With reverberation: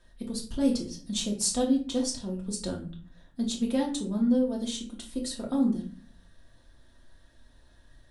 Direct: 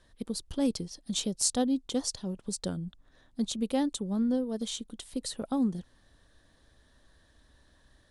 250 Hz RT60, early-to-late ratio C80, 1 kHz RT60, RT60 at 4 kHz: 0.75 s, 14.0 dB, 0.40 s, 0.30 s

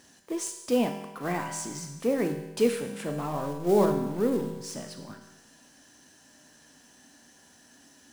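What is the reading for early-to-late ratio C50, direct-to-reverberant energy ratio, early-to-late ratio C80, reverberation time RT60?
7.0 dB, 4.5 dB, 9.0 dB, 1.1 s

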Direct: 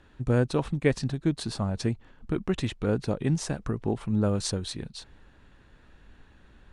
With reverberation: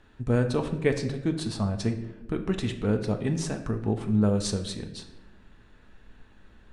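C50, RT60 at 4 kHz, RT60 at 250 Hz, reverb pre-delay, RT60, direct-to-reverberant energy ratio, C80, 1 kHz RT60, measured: 10.0 dB, 0.65 s, 1.6 s, 5 ms, 1.1 s, 5.5 dB, 12.5 dB, 0.85 s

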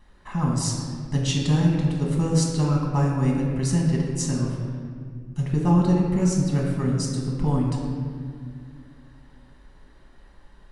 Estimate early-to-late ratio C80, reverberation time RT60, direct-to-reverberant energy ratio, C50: 2.5 dB, 2.1 s, −3.0 dB, 1.0 dB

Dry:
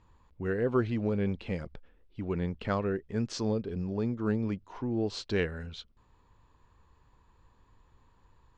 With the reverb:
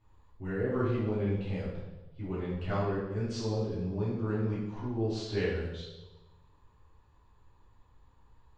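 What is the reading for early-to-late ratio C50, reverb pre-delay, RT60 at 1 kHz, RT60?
1.5 dB, 3 ms, 1.0 s, 1.2 s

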